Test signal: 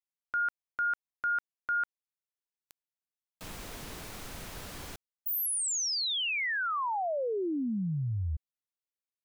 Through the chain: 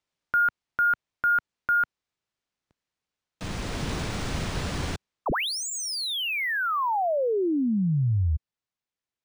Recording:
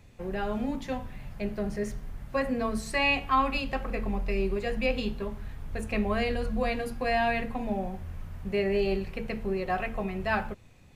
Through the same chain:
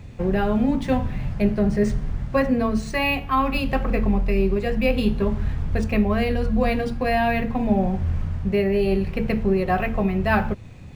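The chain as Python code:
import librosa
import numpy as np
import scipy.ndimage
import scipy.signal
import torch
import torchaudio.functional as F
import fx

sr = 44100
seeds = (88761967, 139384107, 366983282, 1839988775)

y = fx.peak_eq(x, sr, hz=110.0, db=7.5, octaves=2.9)
y = fx.rider(y, sr, range_db=5, speed_s=0.5)
y = np.interp(np.arange(len(y)), np.arange(len(y))[::3], y[::3])
y = y * librosa.db_to_amplitude(5.5)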